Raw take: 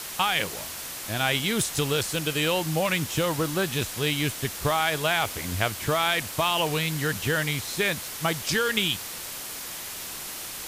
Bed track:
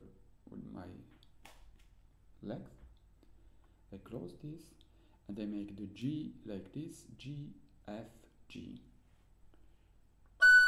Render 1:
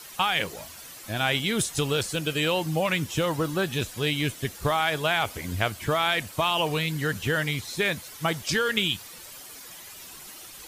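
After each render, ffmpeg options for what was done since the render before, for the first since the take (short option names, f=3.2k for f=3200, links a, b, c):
-af "afftdn=nr=11:nf=-37"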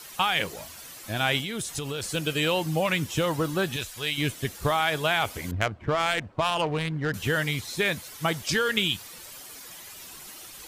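-filter_complex "[0:a]asettb=1/sr,asplit=3[a][b][c];[a]atrim=end=1.404[d];[b]atrim=start=1.4:end=2.03,asetpts=PTS-STARTPTS,afade=t=in:d=0.004:c=qsin,afade=t=out:st=0.626:d=0.004:c=qsin,acompressor=threshold=-28dB:ratio=5:attack=3.2:release=140:knee=1:detection=peak[e];[c]atrim=start=2.026[f];[d][e]acrossfade=d=0.004:c1=hsin:c2=qsin[g];[g][f]acrossfade=d=0.004:c1=qsin:c2=hsin,asettb=1/sr,asplit=3[h][i][j];[h]atrim=end=3.764[k];[i]atrim=start=3.76:end=4.18,asetpts=PTS-STARTPTS,afade=t=in:d=0.004:c=qsin,afade=t=out:st=0.416:d=0.004:c=qsin,equalizer=f=220:w=0.43:g=-12[l];[j]atrim=start=4.176[m];[k][l]acrossfade=d=0.004:c1=hsin:c2=qsin[n];[n][m]acrossfade=d=0.004:c1=qsin:c2=hsin,asettb=1/sr,asplit=3[o][p][q];[o]atrim=end=5.514[r];[p]atrim=start=5.51:end=7.14,asetpts=PTS-STARTPTS,afade=t=in:d=0.004:c=qsin,afade=t=out:st=1.626:d=0.004:c=qsin,adynamicsmooth=sensitivity=1.5:basefreq=860[s];[q]atrim=start=7.136[t];[r][s]acrossfade=d=0.004:c1=hsin:c2=qsin[u];[u][t]acrossfade=d=0.004:c1=qsin:c2=hsin"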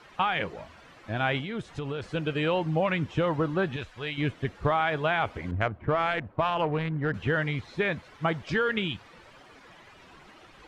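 -af "lowpass=2k"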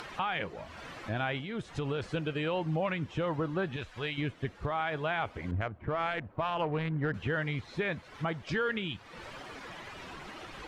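-af "alimiter=limit=-21.5dB:level=0:latency=1:release=461,acompressor=mode=upward:threshold=-36dB:ratio=2.5"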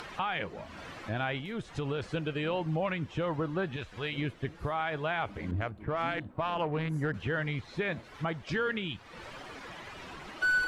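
-filter_complex "[1:a]volume=-5dB[a];[0:a][a]amix=inputs=2:normalize=0"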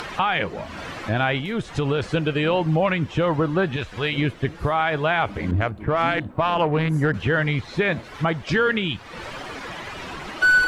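-af "volume=11dB"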